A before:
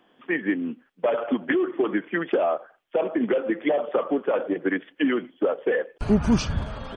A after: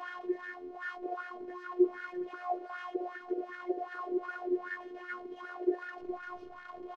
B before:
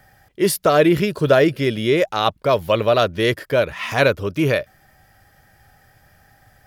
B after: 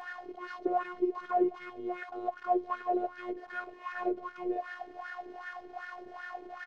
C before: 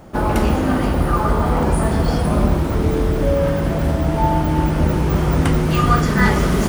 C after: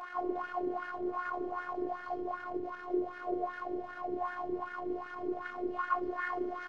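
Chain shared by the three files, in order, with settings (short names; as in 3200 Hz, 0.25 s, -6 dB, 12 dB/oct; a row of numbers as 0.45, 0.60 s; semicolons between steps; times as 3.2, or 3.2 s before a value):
delta modulation 32 kbps, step -26 dBFS; HPF 58 Hz 6 dB/oct; low shelf 180 Hz +10 dB; in parallel at -3 dB: companded quantiser 2-bit; on the sum: hard clip -9.5 dBFS; wah 2.6 Hz 380–1600 Hz, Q 8.3; robotiser 358 Hz; doubler 13 ms -13 dB; gain -3 dB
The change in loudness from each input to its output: -12.0, -17.5, -19.5 LU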